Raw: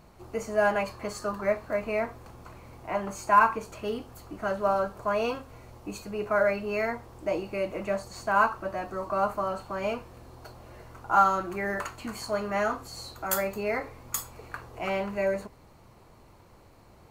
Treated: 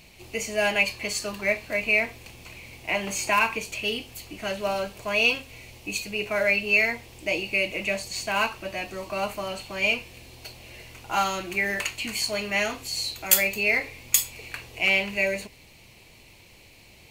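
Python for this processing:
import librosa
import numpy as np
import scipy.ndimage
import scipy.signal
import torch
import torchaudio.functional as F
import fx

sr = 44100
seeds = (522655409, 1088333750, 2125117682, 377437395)

y = fx.high_shelf_res(x, sr, hz=1800.0, db=11.0, q=3.0)
y = fx.band_squash(y, sr, depth_pct=40, at=(2.88, 3.61))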